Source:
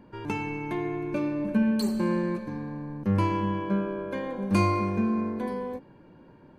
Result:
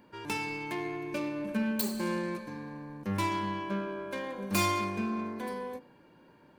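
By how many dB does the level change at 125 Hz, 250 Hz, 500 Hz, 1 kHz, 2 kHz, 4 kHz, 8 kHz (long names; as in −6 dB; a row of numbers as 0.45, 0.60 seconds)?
−9.5 dB, −7.5 dB, −5.5 dB, −2.5 dB, +0.5 dB, +3.5 dB, can't be measured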